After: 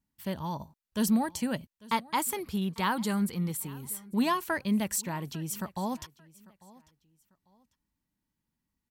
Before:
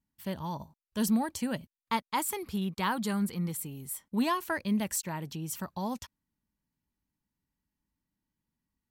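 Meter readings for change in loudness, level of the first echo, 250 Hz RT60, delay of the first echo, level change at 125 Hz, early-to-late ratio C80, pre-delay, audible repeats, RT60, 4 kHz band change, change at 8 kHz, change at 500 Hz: +1.5 dB, -22.5 dB, no reverb, 846 ms, +1.5 dB, no reverb, no reverb, 2, no reverb, +1.5 dB, +1.5 dB, +1.5 dB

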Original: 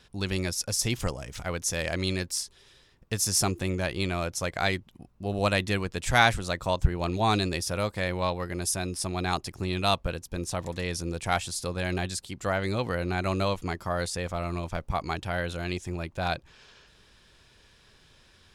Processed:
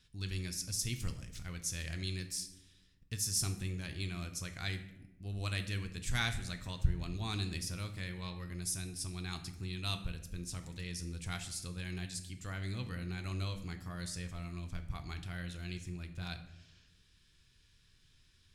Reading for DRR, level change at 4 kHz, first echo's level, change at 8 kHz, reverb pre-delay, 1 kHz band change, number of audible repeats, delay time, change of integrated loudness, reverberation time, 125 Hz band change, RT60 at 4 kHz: 7.0 dB, -9.0 dB, no echo, -8.0 dB, 3 ms, -20.0 dB, no echo, no echo, -10.5 dB, 0.90 s, -7.0 dB, 0.55 s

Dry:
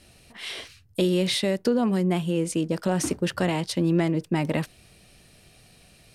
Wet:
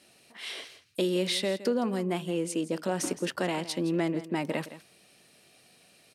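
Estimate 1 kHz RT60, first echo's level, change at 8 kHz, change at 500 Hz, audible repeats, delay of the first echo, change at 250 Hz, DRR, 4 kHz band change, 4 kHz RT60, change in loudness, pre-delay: no reverb, -14.5 dB, -3.5 dB, -3.5 dB, 1, 166 ms, -6.0 dB, no reverb, -3.5 dB, no reverb, -5.5 dB, no reverb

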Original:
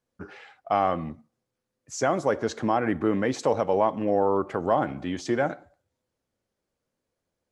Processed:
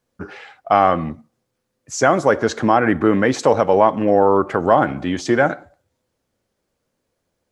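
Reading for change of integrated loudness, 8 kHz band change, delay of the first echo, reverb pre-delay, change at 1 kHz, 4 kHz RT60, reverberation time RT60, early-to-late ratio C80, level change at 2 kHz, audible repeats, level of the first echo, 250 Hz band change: +9.0 dB, +8.5 dB, no echo, no reverb, +9.5 dB, no reverb, no reverb, no reverb, +11.5 dB, no echo, no echo, +8.5 dB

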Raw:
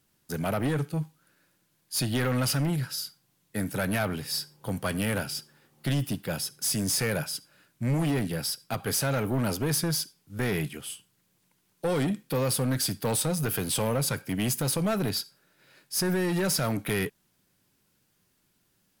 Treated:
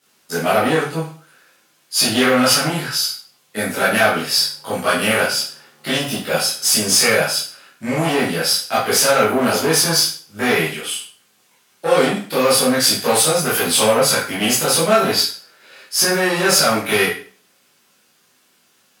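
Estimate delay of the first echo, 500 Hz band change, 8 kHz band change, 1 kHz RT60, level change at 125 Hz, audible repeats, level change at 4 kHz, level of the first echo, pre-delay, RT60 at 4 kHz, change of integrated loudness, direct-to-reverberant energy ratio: no echo, +13.5 dB, +13.5 dB, 0.40 s, +0.5 dB, no echo, +16.0 dB, no echo, 7 ms, 0.40 s, +12.5 dB, -9.5 dB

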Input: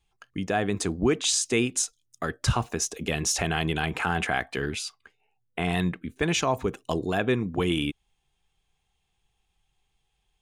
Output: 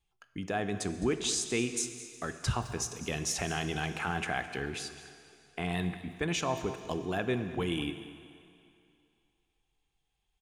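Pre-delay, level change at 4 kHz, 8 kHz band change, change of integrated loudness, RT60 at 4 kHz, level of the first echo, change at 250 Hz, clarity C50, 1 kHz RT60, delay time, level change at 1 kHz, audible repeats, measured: 15 ms, -6.5 dB, -6.5 dB, -6.5 dB, 2.5 s, -16.0 dB, -6.5 dB, 9.5 dB, 2.6 s, 211 ms, -6.5 dB, 1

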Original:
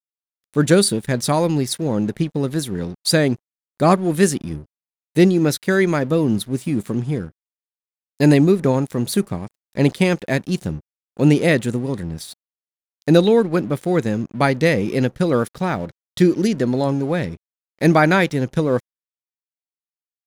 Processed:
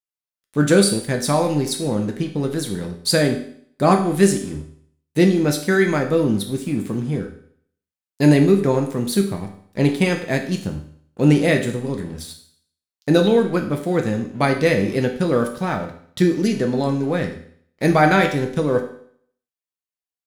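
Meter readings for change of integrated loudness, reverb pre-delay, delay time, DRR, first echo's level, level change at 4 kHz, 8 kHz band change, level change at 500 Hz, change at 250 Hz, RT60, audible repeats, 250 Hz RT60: -0.5 dB, 4 ms, no echo, 3.0 dB, no echo, -0.5 dB, 0.0 dB, -0.5 dB, -0.5 dB, 0.60 s, no echo, 0.60 s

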